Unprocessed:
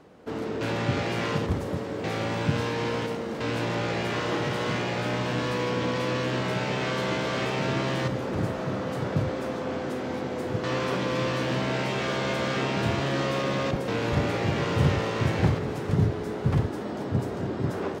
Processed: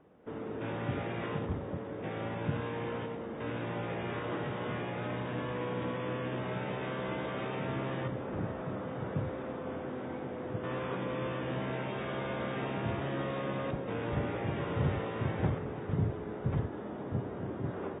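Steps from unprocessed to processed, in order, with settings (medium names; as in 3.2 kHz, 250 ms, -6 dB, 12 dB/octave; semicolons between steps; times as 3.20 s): low-pass 1.8 kHz 6 dB/octave; trim -8 dB; AAC 16 kbps 32 kHz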